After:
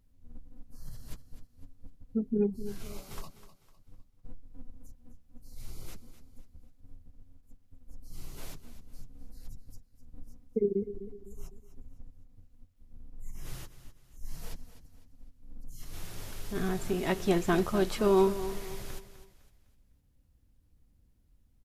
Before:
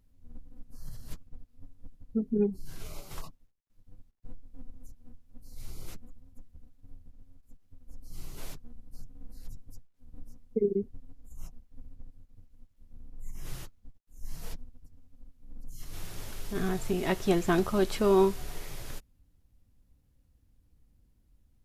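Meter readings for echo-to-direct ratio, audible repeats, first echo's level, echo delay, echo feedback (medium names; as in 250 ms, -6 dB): -12.5 dB, 3, -13.0 dB, 253 ms, 38%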